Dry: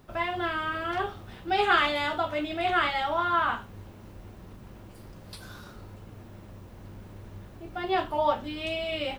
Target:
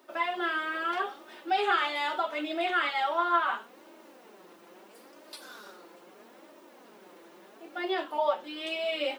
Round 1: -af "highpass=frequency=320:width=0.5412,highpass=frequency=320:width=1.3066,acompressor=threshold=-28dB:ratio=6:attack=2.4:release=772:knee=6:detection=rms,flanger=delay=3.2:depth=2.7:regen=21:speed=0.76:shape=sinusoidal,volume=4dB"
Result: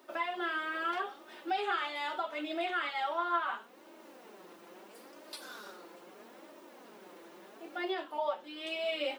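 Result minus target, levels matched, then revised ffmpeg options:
downward compressor: peak gain reduction +7 dB
-af "highpass=frequency=320:width=0.5412,highpass=frequency=320:width=1.3066,acompressor=threshold=-19.5dB:ratio=6:attack=2.4:release=772:knee=6:detection=rms,flanger=delay=3.2:depth=2.7:regen=21:speed=0.76:shape=sinusoidal,volume=4dB"

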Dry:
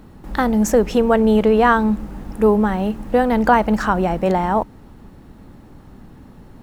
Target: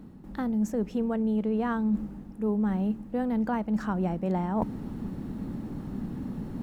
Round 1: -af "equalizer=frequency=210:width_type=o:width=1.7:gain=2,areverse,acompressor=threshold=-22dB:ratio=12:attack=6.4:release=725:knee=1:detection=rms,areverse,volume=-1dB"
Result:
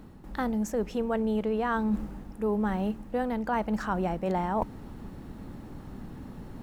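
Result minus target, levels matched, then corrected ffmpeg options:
250 Hz band −3.5 dB
-af "equalizer=frequency=210:width_type=o:width=1.7:gain=12,areverse,acompressor=threshold=-22dB:ratio=12:attack=6.4:release=725:knee=1:detection=rms,areverse,volume=-1dB"

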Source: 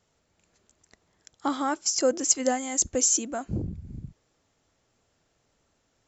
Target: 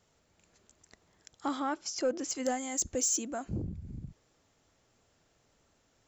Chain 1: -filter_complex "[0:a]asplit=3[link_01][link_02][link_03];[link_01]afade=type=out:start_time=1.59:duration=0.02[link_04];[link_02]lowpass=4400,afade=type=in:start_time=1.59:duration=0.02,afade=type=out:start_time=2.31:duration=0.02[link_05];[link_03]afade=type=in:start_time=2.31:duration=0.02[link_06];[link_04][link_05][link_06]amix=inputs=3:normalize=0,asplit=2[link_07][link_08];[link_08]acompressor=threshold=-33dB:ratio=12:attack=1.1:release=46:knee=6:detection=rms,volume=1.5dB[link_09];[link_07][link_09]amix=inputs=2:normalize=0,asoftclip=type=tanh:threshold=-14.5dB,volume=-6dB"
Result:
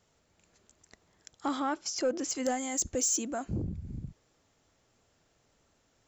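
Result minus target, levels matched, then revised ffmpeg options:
downward compressor: peak gain reduction −10 dB
-filter_complex "[0:a]asplit=3[link_01][link_02][link_03];[link_01]afade=type=out:start_time=1.59:duration=0.02[link_04];[link_02]lowpass=4400,afade=type=in:start_time=1.59:duration=0.02,afade=type=out:start_time=2.31:duration=0.02[link_05];[link_03]afade=type=in:start_time=2.31:duration=0.02[link_06];[link_04][link_05][link_06]amix=inputs=3:normalize=0,asplit=2[link_07][link_08];[link_08]acompressor=threshold=-44dB:ratio=12:attack=1.1:release=46:knee=6:detection=rms,volume=1.5dB[link_09];[link_07][link_09]amix=inputs=2:normalize=0,asoftclip=type=tanh:threshold=-14.5dB,volume=-6dB"

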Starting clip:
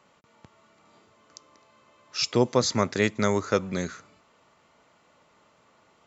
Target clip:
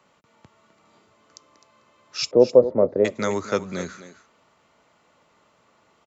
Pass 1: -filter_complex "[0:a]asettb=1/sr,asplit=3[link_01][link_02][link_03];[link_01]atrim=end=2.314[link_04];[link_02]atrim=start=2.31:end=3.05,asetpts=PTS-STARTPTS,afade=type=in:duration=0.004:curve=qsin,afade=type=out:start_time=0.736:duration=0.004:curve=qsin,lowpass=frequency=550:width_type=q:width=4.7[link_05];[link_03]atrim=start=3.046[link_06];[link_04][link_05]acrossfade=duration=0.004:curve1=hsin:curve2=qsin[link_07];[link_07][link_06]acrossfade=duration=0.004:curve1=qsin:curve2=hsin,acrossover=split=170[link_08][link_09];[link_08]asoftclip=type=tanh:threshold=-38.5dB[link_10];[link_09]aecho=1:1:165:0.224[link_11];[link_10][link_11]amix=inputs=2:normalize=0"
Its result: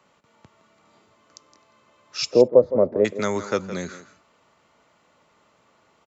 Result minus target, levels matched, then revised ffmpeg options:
echo 92 ms early
-filter_complex "[0:a]asettb=1/sr,asplit=3[link_01][link_02][link_03];[link_01]atrim=end=2.314[link_04];[link_02]atrim=start=2.31:end=3.05,asetpts=PTS-STARTPTS,afade=type=in:duration=0.004:curve=qsin,afade=type=out:start_time=0.736:duration=0.004:curve=qsin,lowpass=frequency=550:width_type=q:width=4.7[link_05];[link_03]atrim=start=3.046[link_06];[link_04][link_05]acrossfade=duration=0.004:curve1=hsin:curve2=qsin[link_07];[link_07][link_06]acrossfade=duration=0.004:curve1=qsin:curve2=hsin,acrossover=split=170[link_08][link_09];[link_08]asoftclip=type=tanh:threshold=-38.5dB[link_10];[link_09]aecho=1:1:257:0.224[link_11];[link_10][link_11]amix=inputs=2:normalize=0"

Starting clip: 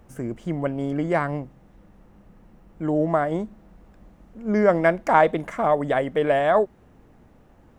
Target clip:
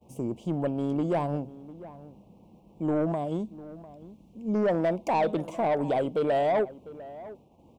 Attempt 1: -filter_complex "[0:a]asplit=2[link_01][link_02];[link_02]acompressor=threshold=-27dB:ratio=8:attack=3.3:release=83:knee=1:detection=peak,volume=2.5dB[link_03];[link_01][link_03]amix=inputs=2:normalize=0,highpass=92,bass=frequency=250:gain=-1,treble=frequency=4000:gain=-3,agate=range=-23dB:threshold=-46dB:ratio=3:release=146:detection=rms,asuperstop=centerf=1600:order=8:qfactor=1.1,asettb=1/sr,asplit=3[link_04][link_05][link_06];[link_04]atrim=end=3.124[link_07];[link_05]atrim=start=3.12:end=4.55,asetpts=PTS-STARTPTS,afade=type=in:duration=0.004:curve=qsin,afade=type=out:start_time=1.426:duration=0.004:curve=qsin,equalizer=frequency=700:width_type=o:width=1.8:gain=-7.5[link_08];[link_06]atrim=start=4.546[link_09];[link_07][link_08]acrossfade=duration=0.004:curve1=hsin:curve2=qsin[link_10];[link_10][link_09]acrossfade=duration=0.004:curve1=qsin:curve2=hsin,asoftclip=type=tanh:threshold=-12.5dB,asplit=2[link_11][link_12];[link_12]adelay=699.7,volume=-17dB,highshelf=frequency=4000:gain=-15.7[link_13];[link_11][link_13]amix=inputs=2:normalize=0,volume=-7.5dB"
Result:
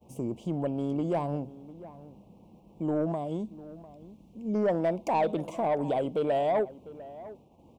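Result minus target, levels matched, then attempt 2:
downward compressor: peak gain reduction +8 dB
-filter_complex "[0:a]asplit=2[link_01][link_02];[link_02]acompressor=threshold=-18dB:ratio=8:attack=3.3:release=83:knee=1:detection=peak,volume=2.5dB[link_03];[link_01][link_03]amix=inputs=2:normalize=0,highpass=92,bass=frequency=250:gain=-1,treble=frequency=4000:gain=-3,agate=range=-23dB:threshold=-46dB:ratio=3:release=146:detection=rms,asuperstop=centerf=1600:order=8:qfactor=1.1,asettb=1/sr,asplit=3[link_04][link_05][link_06];[link_04]atrim=end=3.124[link_07];[link_05]atrim=start=3.12:end=4.55,asetpts=PTS-STARTPTS,afade=type=in:duration=0.004:curve=qsin,afade=type=out:start_time=1.426:duration=0.004:curve=qsin,equalizer=frequency=700:width_type=o:width=1.8:gain=-7.5[link_08];[link_06]atrim=start=4.546[link_09];[link_07][link_08]acrossfade=duration=0.004:curve1=hsin:curve2=qsin[link_10];[link_10][link_09]acrossfade=duration=0.004:curve1=qsin:curve2=hsin,asoftclip=type=tanh:threshold=-12.5dB,asplit=2[link_11][link_12];[link_12]adelay=699.7,volume=-17dB,highshelf=frequency=4000:gain=-15.7[link_13];[link_11][link_13]amix=inputs=2:normalize=0,volume=-7.5dB"

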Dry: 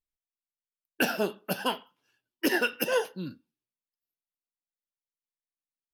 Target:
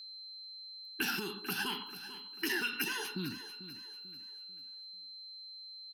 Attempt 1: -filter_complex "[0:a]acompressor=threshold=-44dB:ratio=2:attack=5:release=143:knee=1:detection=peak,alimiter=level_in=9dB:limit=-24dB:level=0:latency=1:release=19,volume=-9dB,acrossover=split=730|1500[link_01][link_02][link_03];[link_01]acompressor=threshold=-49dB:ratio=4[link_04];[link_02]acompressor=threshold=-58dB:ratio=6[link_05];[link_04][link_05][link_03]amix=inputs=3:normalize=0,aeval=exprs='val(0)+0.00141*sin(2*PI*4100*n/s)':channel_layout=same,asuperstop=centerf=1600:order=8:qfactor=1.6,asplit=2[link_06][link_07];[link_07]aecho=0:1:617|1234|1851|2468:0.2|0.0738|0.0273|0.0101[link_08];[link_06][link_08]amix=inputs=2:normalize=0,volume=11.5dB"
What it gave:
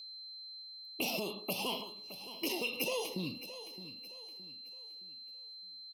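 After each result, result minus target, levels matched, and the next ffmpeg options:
echo 174 ms late; 500 Hz band +7.0 dB
-filter_complex "[0:a]acompressor=threshold=-44dB:ratio=2:attack=5:release=143:knee=1:detection=peak,alimiter=level_in=9dB:limit=-24dB:level=0:latency=1:release=19,volume=-9dB,acrossover=split=730|1500[link_01][link_02][link_03];[link_01]acompressor=threshold=-49dB:ratio=4[link_04];[link_02]acompressor=threshold=-58dB:ratio=6[link_05];[link_04][link_05][link_03]amix=inputs=3:normalize=0,aeval=exprs='val(0)+0.00141*sin(2*PI*4100*n/s)':channel_layout=same,asuperstop=centerf=1600:order=8:qfactor=1.6,asplit=2[link_06][link_07];[link_07]aecho=0:1:443|886|1329|1772:0.2|0.0738|0.0273|0.0101[link_08];[link_06][link_08]amix=inputs=2:normalize=0,volume=11.5dB"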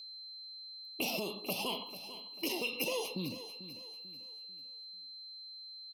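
500 Hz band +7.0 dB
-filter_complex "[0:a]acompressor=threshold=-44dB:ratio=2:attack=5:release=143:knee=1:detection=peak,alimiter=level_in=9dB:limit=-24dB:level=0:latency=1:release=19,volume=-9dB,acrossover=split=730|1500[link_01][link_02][link_03];[link_01]acompressor=threshold=-49dB:ratio=4[link_04];[link_02]acompressor=threshold=-58dB:ratio=6[link_05];[link_04][link_05][link_03]amix=inputs=3:normalize=0,aeval=exprs='val(0)+0.00141*sin(2*PI*4100*n/s)':channel_layout=same,asuperstop=centerf=580:order=8:qfactor=1.6,asplit=2[link_06][link_07];[link_07]aecho=0:1:443|886|1329|1772:0.2|0.0738|0.0273|0.0101[link_08];[link_06][link_08]amix=inputs=2:normalize=0,volume=11.5dB"

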